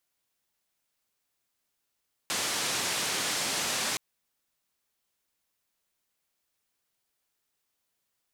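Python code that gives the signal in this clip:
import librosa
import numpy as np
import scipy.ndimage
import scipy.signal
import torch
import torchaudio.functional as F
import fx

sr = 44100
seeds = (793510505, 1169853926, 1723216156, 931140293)

y = fx.band_noise(sr, seeds[0], length_s=1.67, low_hz=130.0, high_hz=7700.0, level_db=-30.5)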